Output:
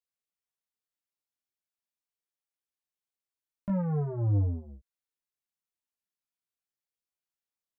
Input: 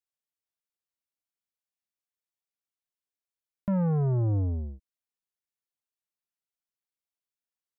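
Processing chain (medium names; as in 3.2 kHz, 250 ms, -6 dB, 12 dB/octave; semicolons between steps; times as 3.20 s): chorus voices 2, 0.34 Hz, delay 18 ms, depth 2.4 ms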